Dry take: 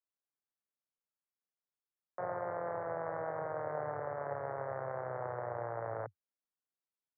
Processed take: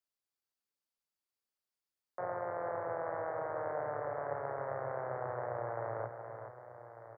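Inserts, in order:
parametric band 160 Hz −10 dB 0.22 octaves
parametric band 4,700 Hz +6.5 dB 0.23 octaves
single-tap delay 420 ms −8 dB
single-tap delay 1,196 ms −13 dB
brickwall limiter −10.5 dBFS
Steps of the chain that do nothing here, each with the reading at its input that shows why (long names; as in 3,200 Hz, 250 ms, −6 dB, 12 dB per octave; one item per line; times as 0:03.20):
parametric band 4,700 Hz: nothing at its input above 2,200 Hz
brickwall limiter −10.5 dBFS: peak of its input −24.5 dBFS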